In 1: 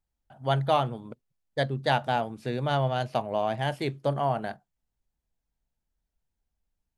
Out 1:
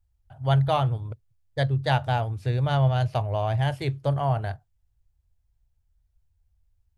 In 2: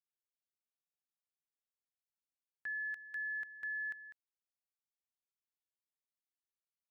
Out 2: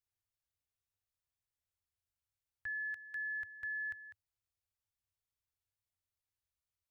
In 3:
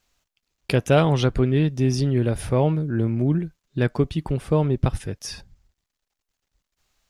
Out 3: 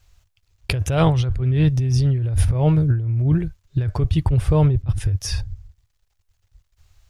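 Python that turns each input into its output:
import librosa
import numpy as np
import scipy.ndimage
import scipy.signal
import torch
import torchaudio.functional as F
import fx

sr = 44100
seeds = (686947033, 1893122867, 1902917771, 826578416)

y = fx.low_shelf_res(x, sr, hz=140.0, db=13.0, q=3.0)
y = fx.over_compress(y, sr, threshold_db=-18.0, ratio=-1.0)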